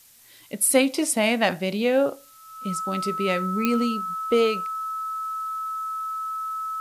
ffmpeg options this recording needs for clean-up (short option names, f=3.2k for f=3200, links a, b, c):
-af "adeclick=t=4,bandreject=f=1.3k:w=30,afftdn=nr=20:nf=-49"